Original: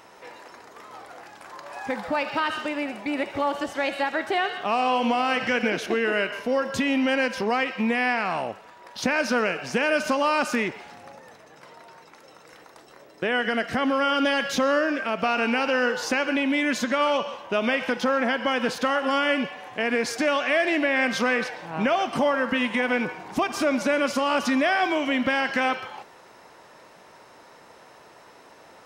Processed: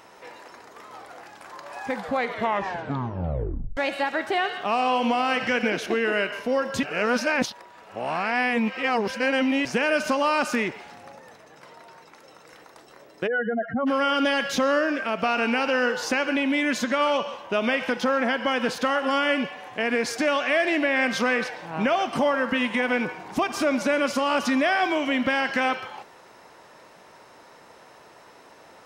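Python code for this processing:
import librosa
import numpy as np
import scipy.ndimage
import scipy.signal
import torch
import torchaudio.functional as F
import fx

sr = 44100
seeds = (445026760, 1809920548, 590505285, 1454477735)

y = fx.spec_expand(x, sr, power=3.5, at=(13.26, 13.86), fade=0.02)
y = fx.edit(y, sr, fx.tape_stop(start_s=1.96, length_s=1.81),
    fx.reverse_span(start_s=6.83, length_s=2.82), tone=tone)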